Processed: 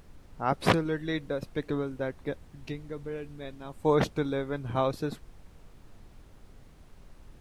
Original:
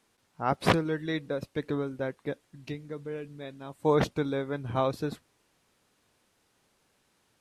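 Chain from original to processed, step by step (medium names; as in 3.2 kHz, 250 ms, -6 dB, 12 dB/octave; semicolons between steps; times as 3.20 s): added noise brown -49 dBFS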